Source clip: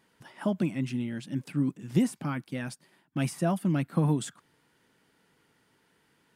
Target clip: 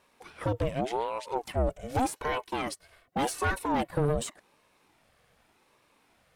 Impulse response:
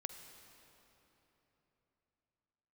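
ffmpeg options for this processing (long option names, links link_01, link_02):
-filter_complex "[0:a]asettb=1/sr,asplit=3[link_01][link_02][link_03];[link_01]atrim=end=1.474[link_04];[link_02]atrim=start=1.47:end=3.91,asetpts=PTS-STARTPTS,afade=type=in:duration=0.004:curve=qsin,afade=type=out:start_time=2.436:duration=0.004:curve=qsin,aecho=1:1:2.7:0.96,atrim=end_sample=107604[link_05];[link_03]atrim=start=3.906[link_06];[link_04][link_05]acrossfade=duration=0.004:curve1=hsin:curve2=qsin[link_07];[link_07][link_06]acrossfade=duration=0.004:curve1=qsin:curve2=hsin,aeval=exprs='(tanh(20*val(0)+0.4)-tanh(0.4))/20':channel_layout=same,aeval=exprs='val(0)*sin(2*PI*530*n/s+530*0.45/0.86*sin(2*PI*0.86*n/s))':channel_layout=same,volume=6dB"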